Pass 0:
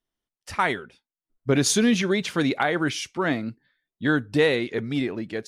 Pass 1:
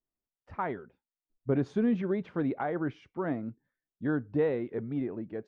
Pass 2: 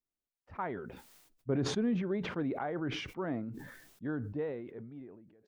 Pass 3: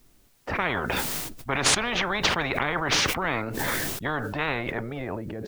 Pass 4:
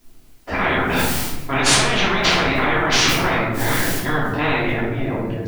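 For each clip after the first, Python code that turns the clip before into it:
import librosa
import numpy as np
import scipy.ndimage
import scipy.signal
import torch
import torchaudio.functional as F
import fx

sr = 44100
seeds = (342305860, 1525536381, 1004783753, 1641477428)

y1 = scipy.signal.sosfilt(scipy.signal.butter(2, 1000.0, 'lowpass', fs=sr, output='sos'), x)
y1 = F.gain(torch.from_numpy(y1), -6.5).numpy()
y2 = fx.fade_out_tail(y1, sr, length_s=1.81)
y2 = fx.sustainer(y2, sr, db_per_s=51.0)
y2 = F.gain(torch.from_numpy(y2), -4.5).numpy()
y3 = fx.low_shelf(y2, sr, hz=280.0, db=11.0)
y3 = fx.spectral_comp(y3, sr, ratio=10.0)
y3 = F.gain(torch.from_numpy(y3), 7.0).numpy()
y4 = fx.room_shoebox(y3, sr, seeds[0], volume_m3=280.0, walls='mixed', distance_m=3.0)
y4 = F.gain(torch.from_numpy(y4), -1.0).numpy()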